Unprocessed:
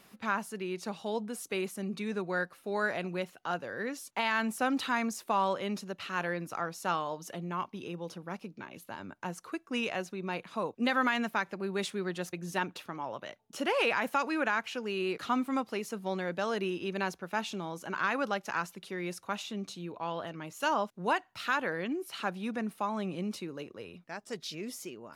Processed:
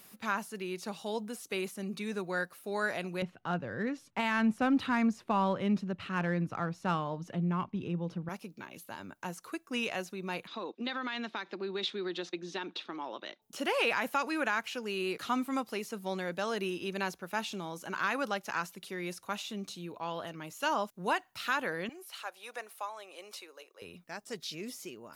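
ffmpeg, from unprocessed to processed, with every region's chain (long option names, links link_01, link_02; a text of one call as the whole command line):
ffmpeg -i in.wav -filter_complex "[0:a]asettb=1/sr,asplit=3[link_01][link_02][link_03];[link_01]atrim=end=3.224[link_04];[link_02]atrim=start=3.22:end=8.29,asetpts=PTS-STARTPTS,afade=type=in:duration=0.004:curve=qsin,afade=type=out:start_time=5.066:duration=0.004:curve=qsin,bass=frequency=250:gain=14,treble=frequency=4000:gain=-11,adynamicsmooth=sensitivity=6:basefreq=5300[link_05];[link_03]atrim=start=8.286[link_06];[link_04][link_05]acrossfade=duration=0.004:curve1=hsin:curve2=qsin[link_07];[link_07][link_06]acrossfade=duration=0.004:curve1=qsin:curve2=hsin,asettb=1/sr,asplit=3[link_08][link_09][link_10];[link_08]atrim=end=10.474[link_11];[link_09]atrim=start=10.47:end=13.42,asetpts=PTS-STARTPTS,afade=type=in:duration=0.004:curve=qsin,afade=type=out:start_time=2.946:duration=0.004:curve=qsin,acompressor=threshold=-31dB:ratio=5:attack=3.2:release=140:knee=1:detection=peak,highpass=frequency=210:width=0.5412,highpass=frequency=210:width=1.3066,equalizer=frequency=340:width_type=q:width=4:gain=7,equalizer=frequency=600:width_type=q:width=4:gain=-3,equalizer=frequency=3700:width_type=q:width=4:gain=9,lowpass=frequency=5000:width=0.5412,lowpass=frequency=5000:width=1.3066[link_12];[link_10]atrim=start=13.416[link_13];[link_11][link_12]acrossfade=duration=0.004:curve1=hsin:curve2=qsin[link_14];[link_14][link_13]acrossfade=duration=0.004:curve1=qsin:curve2=hsin,asettb=1/sr,asplit=3[link_15][link_16][link_17];[link_15]atrim=end=21.894[link_18];[link_16]atrim=start=21.89:end=23.82,asetpts=PTS-STARTPTS,afade=type=in:duration=0.004:curve=qsin,afade=type=out:start_time=1.926:duration=0.004:curve=qsin,highpass=frequency=500:width=0.5412,highpass=frequency=500:width=1.3066,tremolo=f=1.4:d=0.48[link_19];[link_17]atrim=start=23.816[link_20];[link_18][link_19]acrossfade=duration=0.004:curve1=hsin:curve2=qsin[link_21];[link_21][link_20]acrossfade=duration=0.004:curve1=qsin:curve2=hsin,aemphasis=mode=production:type=50kf,acrossover=split=5000[link_22][link_23];[link_23]acompressor=threshold=-46dB:ratio=4:attack=1:release=60[link_24];[link_22][link_24]amix=inputs=2:normalize=0,volume=-2dB" out.wav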